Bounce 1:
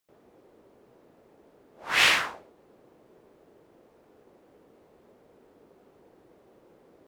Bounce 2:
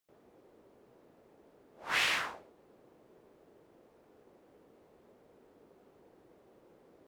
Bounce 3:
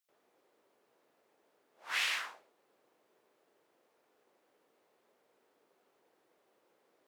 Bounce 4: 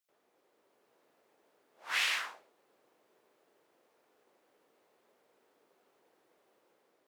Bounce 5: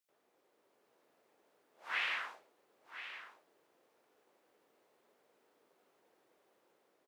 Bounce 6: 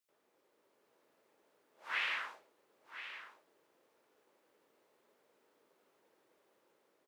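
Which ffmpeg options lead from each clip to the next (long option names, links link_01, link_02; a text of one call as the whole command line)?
ffmpeg -i in.wav -af "alimiter=limit=-15.5dB:level=0:latency=1:release=248,volume=-4dB" out.wav
ffmpeg -i in.wav -af "highpass=frequency=1500:poles=1,volume=-1.5dB" out.wav
ffmpeg -i in.wav -af "dynaudnorm=framelen=270:gausssize=5:maxgain=3dB,volume=-1dB" out.wav
ffmpeg -i in.wav -filter_complex "[0:a]acrossover=split=3100[link_01][link_02];[link_02]acompressor=threshold=-60dB:ratio=4:attack=1:release=60[link_03];[link_01][link_03]amix=inputs=2:normalize=0,aecho=1:1:1022:0.266,volume=-2dB" out.wav
ffmpeg -i in.wav -af "bandreject=frequency=730:width=12" out.wav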